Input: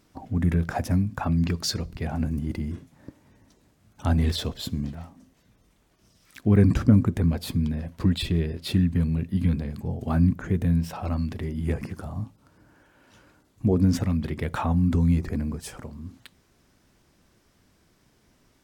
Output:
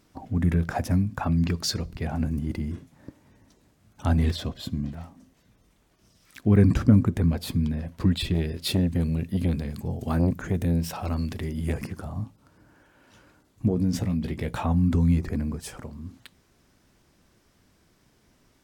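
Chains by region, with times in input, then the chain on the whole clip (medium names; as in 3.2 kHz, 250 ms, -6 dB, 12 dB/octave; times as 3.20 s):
4.31–4.92 s: treble shelf 3.9 kHz -6 dB + comb of notches 440 Hz
8.34–11.87 s: treble shelf 3.3 kHz +8 dB + transformer saturation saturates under 280 Hz
13.68–14.65 s: peaking EQ 1.3 kHz -6.5 dB 1 oct + doubling 17 ms -7.5 dB + compression 2:1, threshold -22 dBFS
whole clip: none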